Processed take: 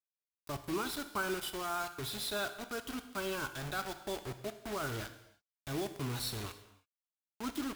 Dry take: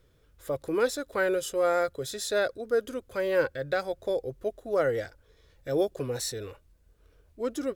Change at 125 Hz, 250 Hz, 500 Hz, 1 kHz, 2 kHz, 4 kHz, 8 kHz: -1.0, -5.0, -15.0, -4.5, -6.0, -0.5, -5.0 dB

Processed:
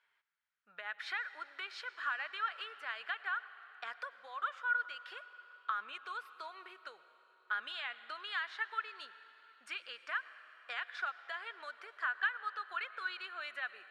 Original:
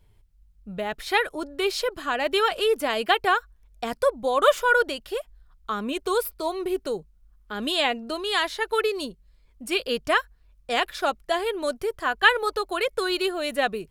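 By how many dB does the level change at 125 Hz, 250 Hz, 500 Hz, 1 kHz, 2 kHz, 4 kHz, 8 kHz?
n/a, under -35 dB, -32.0 dB, -15.0 dB, -10.5 dB, -18.0 dB, under -25 dB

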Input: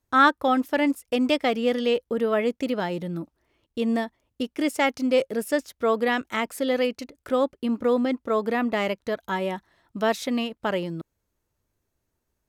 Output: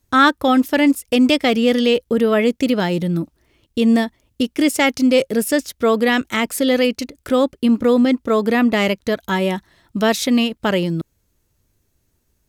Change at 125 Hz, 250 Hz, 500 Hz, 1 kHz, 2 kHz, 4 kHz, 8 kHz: +11.5, +10.0, +6.0, +4.0, +7.0, +10.0, +12.5 dB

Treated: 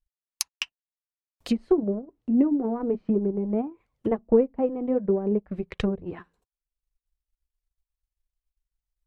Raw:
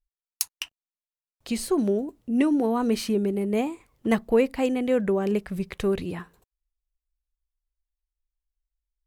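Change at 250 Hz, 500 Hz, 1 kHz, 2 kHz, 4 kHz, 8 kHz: -0.5 dB, -0.5 dB, -4.5 dB, -6.5 dB, -1.5 dB, n/a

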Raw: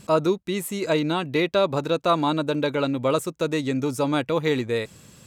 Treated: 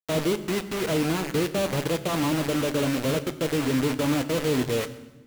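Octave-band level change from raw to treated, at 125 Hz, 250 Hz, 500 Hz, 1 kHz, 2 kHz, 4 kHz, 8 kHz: +1.0, -0.5, -3.5, -6.0, -1.0, -0.5, +4.5 dB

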